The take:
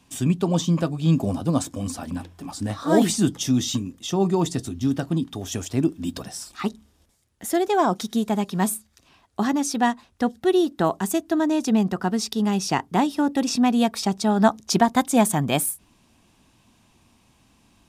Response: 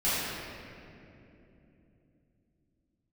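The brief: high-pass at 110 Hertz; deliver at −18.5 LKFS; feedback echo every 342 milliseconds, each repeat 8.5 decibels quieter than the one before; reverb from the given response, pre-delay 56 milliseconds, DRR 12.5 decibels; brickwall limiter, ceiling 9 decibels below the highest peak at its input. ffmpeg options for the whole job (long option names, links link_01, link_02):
-filter_complex "[0:a]highpass=110,alimiter=limit=-13dB:level=0:latency=1,aecho=1:1:342|684|1026|1368:0.376|0.143|0.0543|0.0206,asplit=2[link_01][link_02];[1:a]atrim=start_sample=2205,adelay=56[link_03];[link_02][link_03]afir=irnorm=-1:irlink=0,volume=-25dB[link_04];[link_01][link_04]amix=inputs=2:normalize=0,volume=5.5dB"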